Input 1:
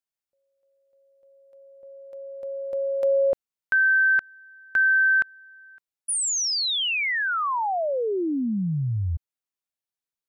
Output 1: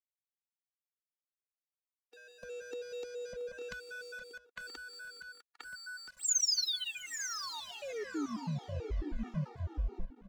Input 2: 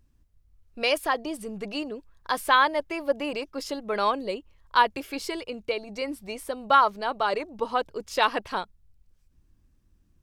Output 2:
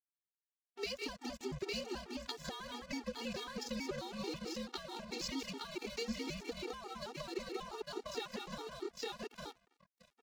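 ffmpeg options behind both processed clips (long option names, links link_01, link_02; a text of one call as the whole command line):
ffmpeg -i in.wav -filter_complex "[0:a]aeval=exprs='sgn(val(0))*max(abs(val(0))-0.0133,0)':channel_layout=same,asplit=2[link_01][link_02];[link_02]aecho=0:1:152|183|855|883:0.1|0.224|0.282|0.299[link_03];[link_01][link_03]amix=inputs=2:normalize=0,acompressor=threshold=-36dB:ratio=16:attack=4.6:release=170:knee=6:detection=peak,aresample=16000,aresample=44100,acrossover=split=460|4200[link_04][link_05][link_06];[link_05]acompressor=threshold=-56dB:ratio=4:attack=5.4:release=39:knee=2.83:detection=peak[link_07];[link_04][link_07][link_06]amix=inputs=3:normalize=0,equalizer=frequency=170:width_type=o:width=0.29:gain=-10,asplit=2[link_08][link_09];[link_09]adelay=977,lowpass=frequency=2900:poles=1,volume=-13dB,asplit=2[link_10][link_11];[link_11]adelay=977,lowpass=frequency=2900:poles=1,volume=0.18[link_12];[link_10][link_12]amix=inputs=2:normalize=0[link_13];[link_08][link_13]amix=inputs=2:normalize=0,afreqshift=-62,highshelf=frequency=2300:gain=5.5,aeval=exprs='sgn(val(0))*max(abs(val(0))-0.00133,0)':channel_layout=same,afftfilt=real='re*gt(sin(2*PI*4.6*pts/sr)*(1-2*mod(floor(b*sr/1024/240),2)),0)':imag='im*gt(sin(2*PI*4.6*pts/sr)*(1-2*mod(floor(b*sr/1024/240),2)),0)':win_size=1024:overlap=0.75,volume=9dB" out.wav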